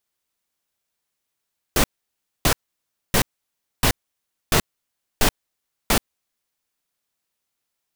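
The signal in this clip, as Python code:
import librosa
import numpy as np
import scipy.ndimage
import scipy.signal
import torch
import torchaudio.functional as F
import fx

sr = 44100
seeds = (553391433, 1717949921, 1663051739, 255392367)

y = fx.noise_burst(sr, seeds[0], colour='pink', on_s=0.08, off_s=0.61, bursts=7, level_db=-16.5)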